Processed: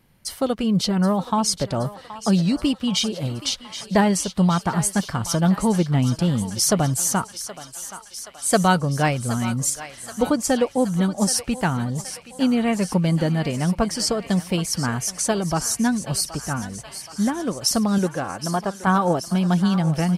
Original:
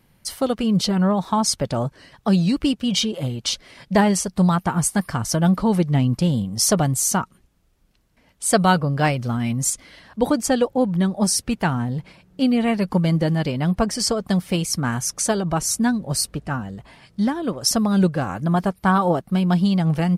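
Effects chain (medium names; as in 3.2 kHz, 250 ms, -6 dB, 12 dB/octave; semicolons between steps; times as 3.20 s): 17.98–18.87 s: tone controls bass -8 dB, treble -6 dB; on a send: thinning echo 774 ms, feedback 73%, high-pass 770 Hz, level -11.5 dB; on the sum: trim -1 dB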